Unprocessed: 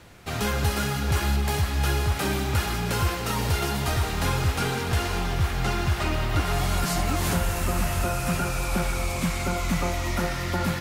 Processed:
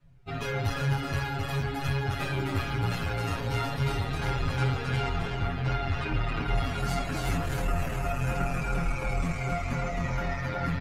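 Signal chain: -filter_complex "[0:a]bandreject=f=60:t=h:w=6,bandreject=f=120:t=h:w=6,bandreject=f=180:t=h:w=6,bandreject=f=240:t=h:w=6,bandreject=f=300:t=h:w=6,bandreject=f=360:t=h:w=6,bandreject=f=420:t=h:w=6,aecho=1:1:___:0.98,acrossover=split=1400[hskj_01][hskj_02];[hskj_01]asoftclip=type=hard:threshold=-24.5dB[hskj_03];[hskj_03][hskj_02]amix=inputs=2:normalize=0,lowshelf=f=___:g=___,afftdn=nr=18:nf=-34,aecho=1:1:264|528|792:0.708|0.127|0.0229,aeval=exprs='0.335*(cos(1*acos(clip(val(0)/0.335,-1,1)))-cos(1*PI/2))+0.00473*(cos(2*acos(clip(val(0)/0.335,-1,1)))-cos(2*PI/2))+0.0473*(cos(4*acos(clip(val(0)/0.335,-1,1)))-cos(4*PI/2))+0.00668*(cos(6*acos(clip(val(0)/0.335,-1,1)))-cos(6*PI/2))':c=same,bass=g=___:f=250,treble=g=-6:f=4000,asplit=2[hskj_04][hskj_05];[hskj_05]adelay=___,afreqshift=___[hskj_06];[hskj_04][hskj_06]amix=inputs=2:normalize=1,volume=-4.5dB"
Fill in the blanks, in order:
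7.2, 160, 7.5, 0, 8.3, -2.7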